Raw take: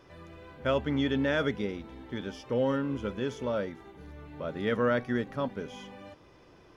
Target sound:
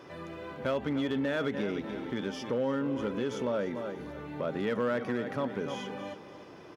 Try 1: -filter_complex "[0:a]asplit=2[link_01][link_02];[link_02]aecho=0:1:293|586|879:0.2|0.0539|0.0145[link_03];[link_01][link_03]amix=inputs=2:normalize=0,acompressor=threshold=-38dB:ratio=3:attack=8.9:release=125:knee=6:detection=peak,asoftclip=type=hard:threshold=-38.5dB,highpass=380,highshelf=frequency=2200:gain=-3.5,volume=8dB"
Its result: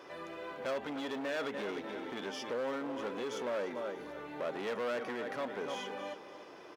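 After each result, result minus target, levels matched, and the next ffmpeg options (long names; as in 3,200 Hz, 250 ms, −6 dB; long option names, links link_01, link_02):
125 Hz band −10.5 dB; hard clipping: distortion +13 dB
-filter_complex "[0:a]asplit=2[link_01][link_02];[link_02]aecho=0:1:293|586|879:0.2|0.0539|0.0145[link_03];[link_01][link_03]amix=inputs=2:normalize=0,acompressor=threshold=-38dB:ratio=3:attack=8.9:release=125:knee=6:detection=peak,asoftclip=type=hard:threshold=-38.5dB,highpass=150,highshelf=frequency=2200:gain=-3.5,volume=8dB"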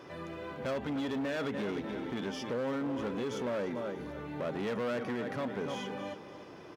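hard clipping: distortion +13 dB
-filter_complex "[0:a]asplit=2[link_01][link_02];[link_02]aecho=0:1:293|586|879:0.2|0.0539|0.0145[link_03];[link_01][link_03]amix=inputs=2:normalize=0,acompressor=threshold=-38dB:ratio=3:attack=8.9:release=125:knee=6:detection=peak,asoftclip=type=hard:threshold=-31.5dB,highpass=150,highshelf=frequency=2200:gain=-3.5,volume=8dB"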